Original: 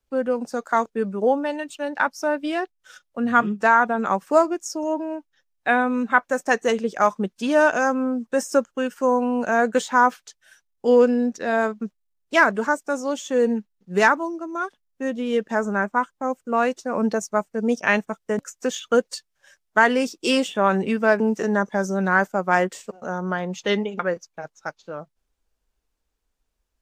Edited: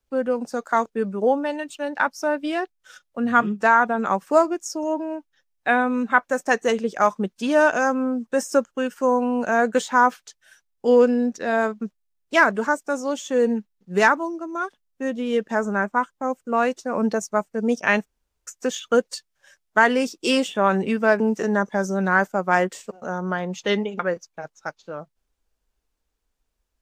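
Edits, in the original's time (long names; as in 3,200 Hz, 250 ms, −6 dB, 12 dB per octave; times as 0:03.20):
0:18.06–0:18.47: fill with room tone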